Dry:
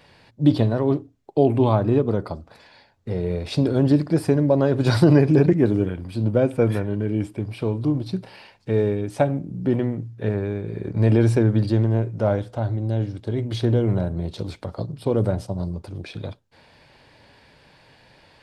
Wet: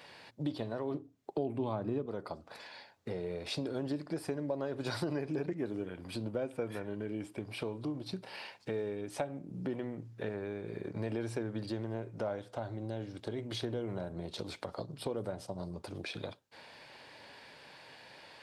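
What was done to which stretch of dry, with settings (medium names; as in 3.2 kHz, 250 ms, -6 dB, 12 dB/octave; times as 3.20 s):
0.94–2.06 s: peaking EQ 160 Hz +8 dB 2.5 oct
whole clip: high-pass 440 Hz 6 dB/octave; compression 3:1, threshold -39 dBFS; trim +1 dB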